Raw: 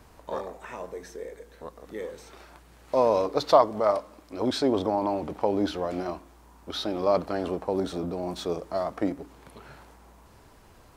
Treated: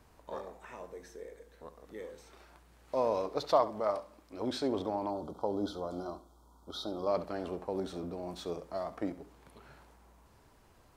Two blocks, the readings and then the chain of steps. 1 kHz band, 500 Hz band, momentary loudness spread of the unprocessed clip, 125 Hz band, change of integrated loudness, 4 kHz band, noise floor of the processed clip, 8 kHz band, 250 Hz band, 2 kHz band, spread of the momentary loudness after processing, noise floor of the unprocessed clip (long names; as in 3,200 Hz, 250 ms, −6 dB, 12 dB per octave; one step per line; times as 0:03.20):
−8.5 dB, −8.5 dB, 18 LU, −8.5 dB, −8.5 dB, −8.5 dB, −62 dBFS, −8.5 dB, −8.5 dB, −9.0 dB, 18 LU, −54 dBFS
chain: flutter between parallel walls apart 11.7 metres, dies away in 0.28 s
gain on a spectral selection 0:05.10–0:07.08, 1,500–3,100 Hz −21 dB
level −8.5 dB